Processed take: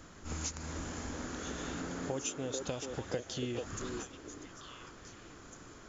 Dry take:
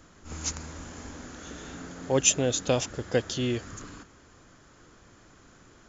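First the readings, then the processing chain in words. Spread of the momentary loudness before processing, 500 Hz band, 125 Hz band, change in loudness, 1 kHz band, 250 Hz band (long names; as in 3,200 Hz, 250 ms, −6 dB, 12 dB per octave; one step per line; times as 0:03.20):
20 LU, −10.0 dB, −8.0 dB, −12.5 dB, −5.5 dB, −7.0 dB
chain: downward compressor 16 to 1, threshold −36 dBFS, peak gain reduction 20.5 dB
on a send: echo through a band-pass that steps 438 ms, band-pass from 390 Hz, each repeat 1.4 octaves, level −1 dB
on the sum: level +1.5 dB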